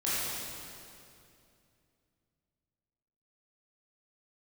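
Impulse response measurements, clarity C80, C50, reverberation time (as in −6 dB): −2.5 dB, −5.0 dB, 2.6 s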